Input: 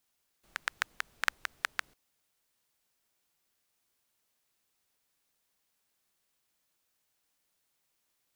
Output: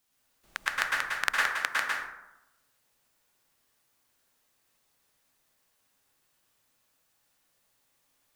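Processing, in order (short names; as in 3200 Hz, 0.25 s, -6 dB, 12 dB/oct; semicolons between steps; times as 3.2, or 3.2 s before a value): 1.38–1.78 HPF 140 Hz 24 dB/oct; plate-style reverb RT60 0.91 s, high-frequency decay 0.45×, pre-delay 95 ms, DRR -4.5 dB; gain +2 dB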